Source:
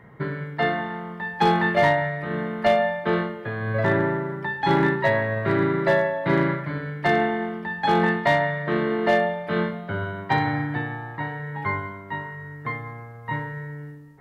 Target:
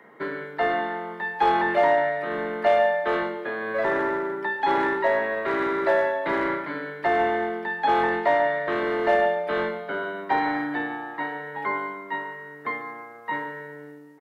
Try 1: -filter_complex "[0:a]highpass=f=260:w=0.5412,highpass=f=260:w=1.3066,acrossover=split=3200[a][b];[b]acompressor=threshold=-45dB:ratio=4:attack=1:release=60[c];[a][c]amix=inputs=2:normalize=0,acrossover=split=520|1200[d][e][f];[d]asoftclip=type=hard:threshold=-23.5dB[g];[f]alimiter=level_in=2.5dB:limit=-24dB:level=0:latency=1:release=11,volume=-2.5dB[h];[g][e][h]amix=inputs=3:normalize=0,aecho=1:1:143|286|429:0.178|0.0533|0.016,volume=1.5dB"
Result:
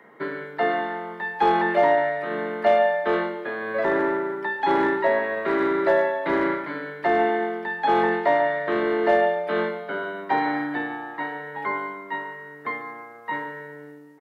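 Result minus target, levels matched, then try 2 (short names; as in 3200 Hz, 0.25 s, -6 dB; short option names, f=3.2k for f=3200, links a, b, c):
hard clip: distortion -9 dB
-filter_complex "[0:a]highpass=f=260:w=0.5412,highpass=f=260:w=1.3066,acrossover=split=3200[a][b];[b]acompressor=threshold=-45dB:ratio=4:attack=1:release=60[c];[a][c]amix=inputs=2:normalize=0,acrossover=split=520|1200[d][e][f];[d]asoftclip=type=hard:threshold=-31dB[g];[f]alimiter=level_in=2.5dB:limit=-24dB:level=0:latency=1:release=11,volume=-2.5dB[h];[g][e][h]amix=inputs=3:normalize=0,aecho=1:1:143|286|429:0.178|0.0533|0.016,volume=1.5dB"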